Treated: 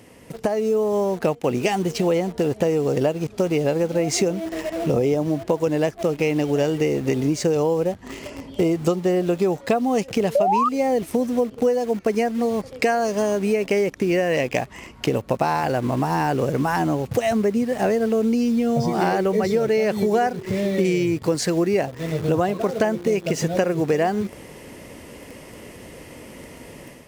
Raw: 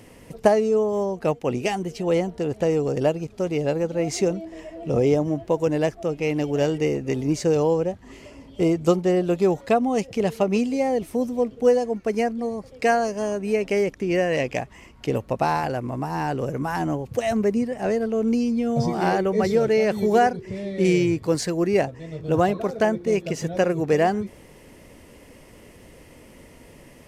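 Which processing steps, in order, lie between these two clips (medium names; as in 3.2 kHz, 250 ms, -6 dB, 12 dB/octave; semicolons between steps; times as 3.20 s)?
in parallel at -8.5 dB: word length cut 6-bit, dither none; on the sum: painted sound rise, 10.35–10.69 s, 540–1300 Hz -12 dBFS; compression 5:1, threshold -26 dBFS, peak gain reduction 15.5 dB; high-pass 90 Hz 6 dB/octave; level rider gain up to 8 dB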